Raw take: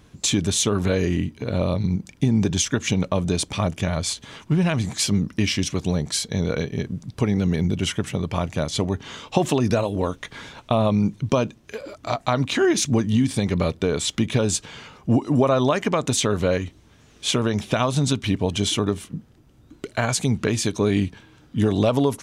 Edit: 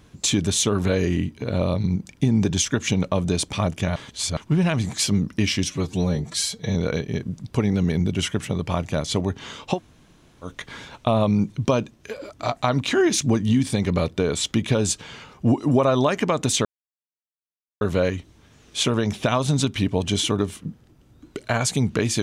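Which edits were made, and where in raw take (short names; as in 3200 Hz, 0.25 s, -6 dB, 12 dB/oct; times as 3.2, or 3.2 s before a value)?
3.96–4.37 reverse
5.67–6.39 stretch 1.5×
9.39–10.1 room tone, crossfade 0.10 s
16.29 insert silence 1.16 s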